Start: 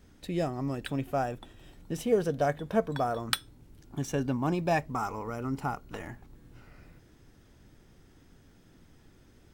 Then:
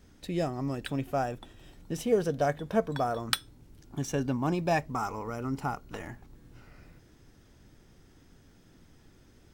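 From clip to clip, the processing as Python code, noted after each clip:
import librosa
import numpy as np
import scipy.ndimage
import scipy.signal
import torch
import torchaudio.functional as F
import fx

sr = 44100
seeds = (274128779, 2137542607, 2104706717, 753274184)

y = fx.peak_eq(x, sr, hz=5600.0, db=2.5, octaves=0.77)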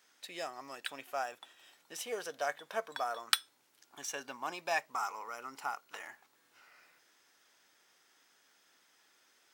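y = scipy.signal.sosfilt(scipy.signal.butter(2, 1000.0, 'highpass', fs=sr, output='sos'), x)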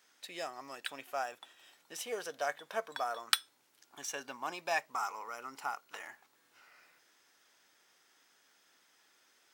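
y = x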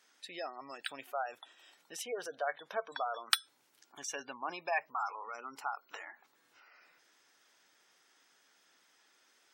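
y = fx.spec_gate(x, sr, threshold_db=-20, keep='strong')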